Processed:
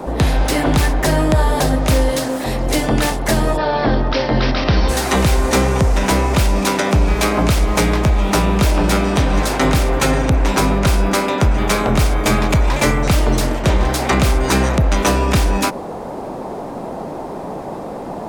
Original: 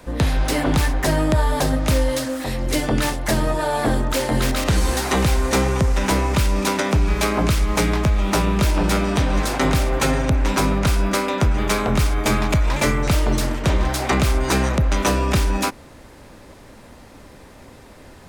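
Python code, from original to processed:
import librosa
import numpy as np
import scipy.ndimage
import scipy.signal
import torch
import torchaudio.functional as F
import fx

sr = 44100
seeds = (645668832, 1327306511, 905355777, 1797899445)

y = fx.dmg_noise_band(x, sr, seeds[0], low_hz=140.0, high_hz=870.0, level_db=-31.0)
y = fx.steep_lowpass(y, sr, hz=5600.0, slope=96, at=(3.56, 4.88), fade=0.02)
y = y * librosa.db_to_amplitude(3.5)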